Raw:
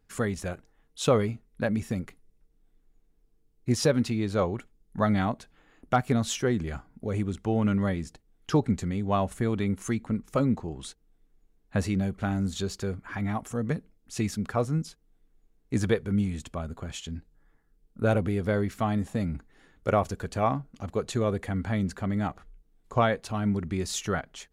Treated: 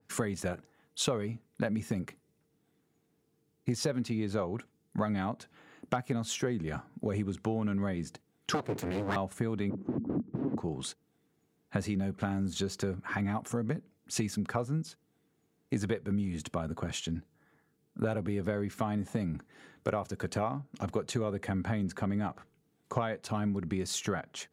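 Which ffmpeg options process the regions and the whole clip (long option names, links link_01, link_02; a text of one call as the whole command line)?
ffmpeg -i in.wav -filter_complex "[0:a]asettb=1/sr,asplit=3[link_01][link_02][link_03];[link_01]atrim=end=8.544[link_04];[link_02]atrim=start=8.54:end=9.16,asetpts=PTS-STARTPTS,afade=type=in:duration=0.004:curve=qsin,afade=type=out:start_time=0.616:duration=0.004:curve=qsin,bandreject=frequency=60:width_type=h:width=6,bandreject=frequency=120:width_type=h:width=6,bandreject=frequency=180:width_type=h:width=6,bandreject=frequency=240:width_type=h:width=6,aeval=exprs='abs(val(0))':channel_layout=same[link_05];[link_03]atrim=start=9.156[link_06];[link_04][link_05]acrossfade=duration=0.004:curve1=hsin:curve2=qsin[link_07];[link_07][link_06]acrossfade=duration=0.004:curve1=qsin:curve2=hsin,asettb=1/sr,asplit=3[link_08][link_09][link_10];[link_08]atrim=end=9.704[link_11];[link_09]atrim=start=9.7:end=10.58,asetpts=PTS-STARTPTS,afade=type=in:duration=0.004:curve=qsin,afade=type=out:start_time=0.876:duration=0.004:curve=qsin,aeval=exprs='(mod(33.5*val(0)+1,2)-1)/33.5':channel_layout=same,lowpass=frequency=290:width_type=q:width=2.2,acontrast=73[link_12];[link_10]atrim=start=10.576[link_13];[link_11][link_12]acrossfade=duration=0.004:curve1=hsin:curve2=qsin[link_14];[link_14][link_13]acrossfade=duration=0.004:curve1=qsin:curve2=hsin,highpass=frequency=100:width=0.5412,highpass=frequency=100:width=1.3066,acompressor=threshold=-33dB:ratio=6,adynamicequalizer=threshold=0.002:dfrequency=1800:dqfactor=0.7:tfrequency=1800:tqfactor=0.7:attack=5:release=100:ratio=0.375:range=1.5:mode=cutabove:tftype=highshelf,volume=4.5dB" out.wav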